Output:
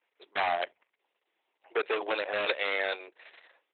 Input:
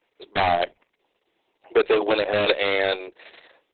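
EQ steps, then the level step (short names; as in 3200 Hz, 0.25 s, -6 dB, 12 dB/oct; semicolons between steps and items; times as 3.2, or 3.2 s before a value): band-pass 3100 Hz, Q 0.53; air absorption 170 m; high shelf 3500 Hz -10 dB; 0.0 dB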